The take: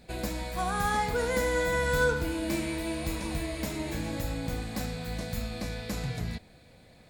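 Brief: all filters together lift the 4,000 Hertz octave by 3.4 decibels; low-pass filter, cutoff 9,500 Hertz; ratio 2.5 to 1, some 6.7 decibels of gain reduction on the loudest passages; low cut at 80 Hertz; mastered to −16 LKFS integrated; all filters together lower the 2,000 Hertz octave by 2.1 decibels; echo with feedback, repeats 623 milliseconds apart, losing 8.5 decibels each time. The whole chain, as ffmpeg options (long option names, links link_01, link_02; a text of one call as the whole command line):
ffmpeg -i in.wav -af "highpass=80,lowpass=9500,equalizer=frequency=2000:width_type=o:gain=-4,equalizer=frequency=4000:width_type=o:gain=5,acompressor=threshold=-32dB:ratio=2.5,aecho=1:1:623|1246|1869|2492:0.376|0.143|0.0543|0.0206,volume=19dB" out.wav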